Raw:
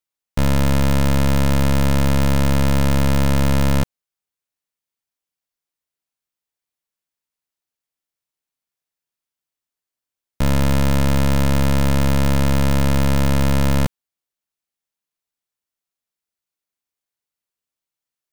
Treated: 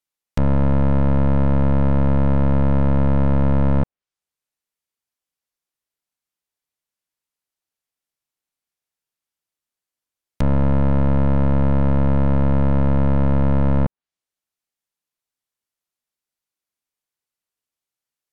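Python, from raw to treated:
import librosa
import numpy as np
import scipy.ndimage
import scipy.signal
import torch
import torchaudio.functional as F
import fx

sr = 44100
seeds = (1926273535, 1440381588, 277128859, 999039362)

y = fx.env_lowpass_down(x, sr, base_hz=1100.0, full_db=-18.5)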